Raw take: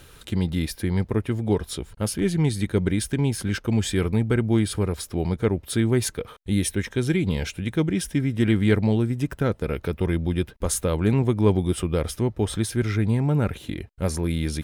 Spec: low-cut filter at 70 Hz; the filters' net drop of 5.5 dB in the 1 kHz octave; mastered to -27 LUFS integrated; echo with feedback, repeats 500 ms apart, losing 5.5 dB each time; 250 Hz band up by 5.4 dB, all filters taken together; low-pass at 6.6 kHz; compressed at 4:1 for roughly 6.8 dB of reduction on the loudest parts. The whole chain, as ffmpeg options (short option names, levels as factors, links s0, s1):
-af "highpass=70,lowpass=6600,equalizer=f=250:t=o:g=7.5,equalizer=f=1000:t=o:g=-8,acompressor=threshold=0.1:ratio=4,aecho=1:1:500|1000|1500|2000|2500|3000|3500:0.531|0.281|0.149|0.079|0.0419|0.0222|0.0118,volume=0.75"